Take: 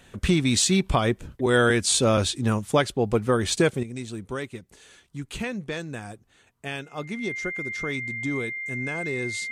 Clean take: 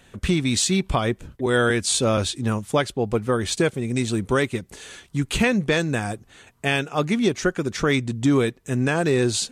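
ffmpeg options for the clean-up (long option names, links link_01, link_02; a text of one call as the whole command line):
ffmpeg -i in.wav -af "bandreject=frequency=2100:width=30,asetnsamples=nb_out_samples=441:pad=0,asendcmd='3.83 volume volume 11dB',volume=0dB" out.wav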